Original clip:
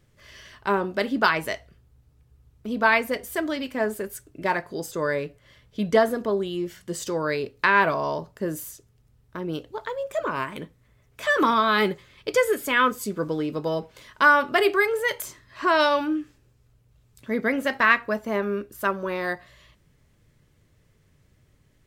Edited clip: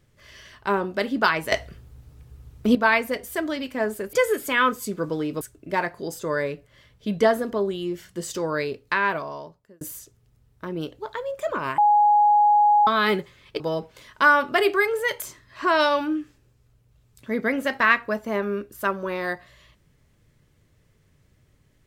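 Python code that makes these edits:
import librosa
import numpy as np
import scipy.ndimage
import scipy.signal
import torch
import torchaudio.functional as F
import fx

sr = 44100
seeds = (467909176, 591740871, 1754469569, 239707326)

y = fx.edit(x, sr, fx.clip_gain(start_s=1.52, length_s=1.23, db=11.5),
    fx.fade_out_span(start_s=7.3, length_s=1.23),
    fx.bleep(start_s=10.5, length_s=1.09, hz=832.0, db=-13.5),
    fx.move(start_s=12.32, length_s=1.28, to_s=4.13), tone=tone)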